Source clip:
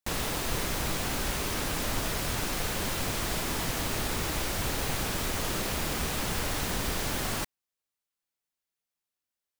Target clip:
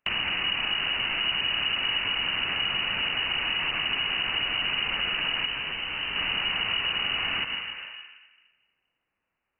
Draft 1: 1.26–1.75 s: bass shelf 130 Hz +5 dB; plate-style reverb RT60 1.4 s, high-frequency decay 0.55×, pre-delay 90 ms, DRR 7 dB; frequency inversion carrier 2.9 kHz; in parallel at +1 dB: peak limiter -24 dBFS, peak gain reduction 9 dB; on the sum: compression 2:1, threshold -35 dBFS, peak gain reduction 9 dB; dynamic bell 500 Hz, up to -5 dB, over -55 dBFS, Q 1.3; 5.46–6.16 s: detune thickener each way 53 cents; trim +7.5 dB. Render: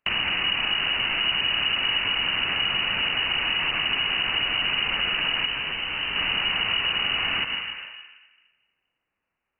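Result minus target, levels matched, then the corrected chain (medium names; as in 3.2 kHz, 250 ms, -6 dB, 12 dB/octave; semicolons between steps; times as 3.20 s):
compression: peak gain reduction -3 dB
1.26–1.75 s: bass shelf 130 Hz +5 dB; plate-style reverb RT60 1.4 s, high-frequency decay 0.55×, pre-delay 90 ms, DRR 7 dB; frequency inversion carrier 2.9 kHz; in parallel at +1 dB: peak limiter -24 dBFS, peak gain reduction 9 dB; on the sum: compression 2:1, threshold -41 dBFS, peak gain reduction 12 dB; dynamic bell 500 Hz, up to -5 dB, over -55 dBFS, Q 1.3; 5.46–6.16 s: detune thickener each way 53 cents; trim +7.5 dB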